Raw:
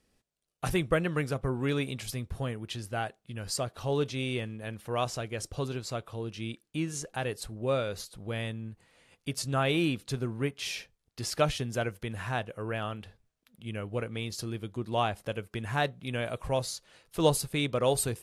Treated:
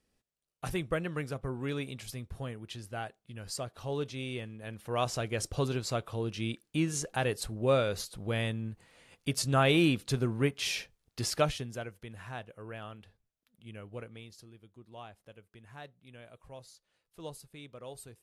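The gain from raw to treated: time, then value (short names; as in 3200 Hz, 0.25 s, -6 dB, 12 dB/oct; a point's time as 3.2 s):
4.53 s -5.5 dB
5.29 s +2.5 dB
11.21 s +2.5 dB
11.86 s -9.5 dB
14.02 s -9.5 dB
14.51 s -19 dB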